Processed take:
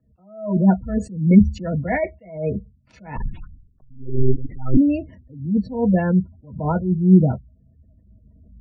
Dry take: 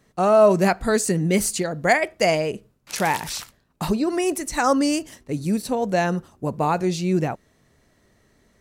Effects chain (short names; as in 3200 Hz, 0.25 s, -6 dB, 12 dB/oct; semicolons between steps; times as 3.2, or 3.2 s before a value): G.711 law mismatch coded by A; recorder AGC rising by 6.3 dB/s; reverb RT60 0.10 s, pre-delay 3 ms, DRR 3 dB; 3.16–4.77 monotone LPC vocoder at 8 kHz 130 Hz; tilt -3.5 dB/oct; spectral gate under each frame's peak -25 dB strong; 0.89–1.79 dynamic EQ 110 Hz, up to +6 dB, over -15 dBFS, Q 0.77; attack slew limiter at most 110 dB/s; gain -10 dB